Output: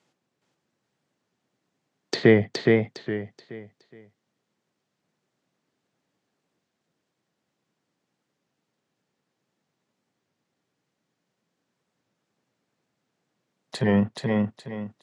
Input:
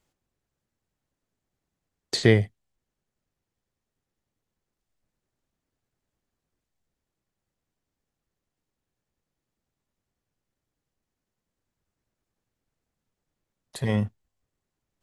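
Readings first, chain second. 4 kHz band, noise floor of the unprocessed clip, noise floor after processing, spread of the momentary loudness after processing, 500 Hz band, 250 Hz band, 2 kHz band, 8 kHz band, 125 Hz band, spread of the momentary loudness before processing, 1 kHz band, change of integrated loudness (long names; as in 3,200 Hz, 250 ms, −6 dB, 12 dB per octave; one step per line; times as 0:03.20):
−1.0 dB, below −85 dBFS, −80 dBFS, 21 LU, +6.0 dB, +6.5 dB, +3.5 dB, −4.0 dB, −1.0 dB, 15 LU, +7.0 dB, +1.0 dB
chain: in parallel at +1.5 dB: brickwall limiter −14 dBFS, peak gain reduction 9.5 dB
on the sum: low-pass filter 6,200 Hz 12 dB per octave
treble cut that deepens with the level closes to 2,200 Hz
high-pass filter 140 Hz 24 dB per octave
on a send: repeating echo 418 ms, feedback 31%, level −3 dB
on the sum: wow of a warped record 33 1/3 rpm, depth 100 cents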